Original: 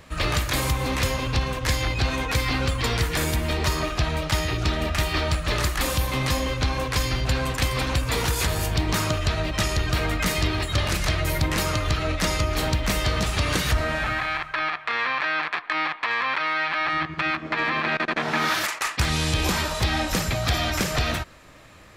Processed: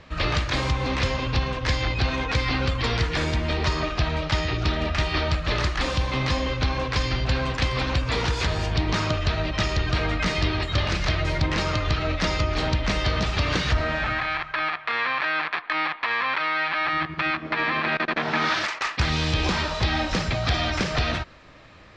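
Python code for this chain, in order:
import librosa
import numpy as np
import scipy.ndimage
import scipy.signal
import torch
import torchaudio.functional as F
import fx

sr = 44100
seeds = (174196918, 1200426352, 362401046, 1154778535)

y = scipy.signal.sosfilt(scipy.signal.butter(4, 5400.0, 'lowpass', fs=sr, output='sos'), x)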